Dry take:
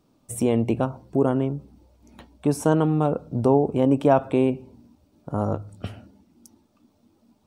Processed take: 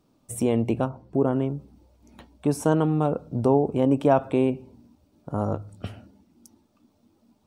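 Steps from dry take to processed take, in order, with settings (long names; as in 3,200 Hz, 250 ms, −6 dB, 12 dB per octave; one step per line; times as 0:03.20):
0:00.88–0:01.33: high-shelf EQ 3,000 Hz −10 dB
level −1.5 dB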